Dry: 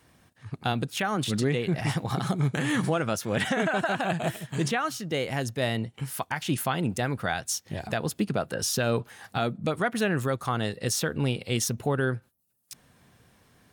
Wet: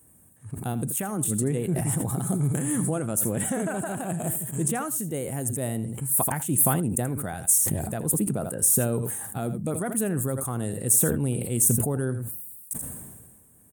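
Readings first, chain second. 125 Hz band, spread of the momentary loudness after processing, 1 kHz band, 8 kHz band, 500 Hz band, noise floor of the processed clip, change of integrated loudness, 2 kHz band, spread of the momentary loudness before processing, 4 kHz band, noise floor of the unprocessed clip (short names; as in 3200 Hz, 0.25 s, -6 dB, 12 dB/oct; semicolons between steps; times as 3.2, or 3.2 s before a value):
+2.0 dB, 11 LU, -4.0 dB, +11.0 dB, -1.5 dB, -56 dBFS, +3.5 dB, -9.0 dB, 6 LU, -13.5 dB, -64 dBFS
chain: EQ curve 300 Hz 0 dB, 5000 Hz -19 dB, 8300 Hz +14 dB; on a send: echo 82 ms -15.5 dB; on the sum: sustainer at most 37 dB/s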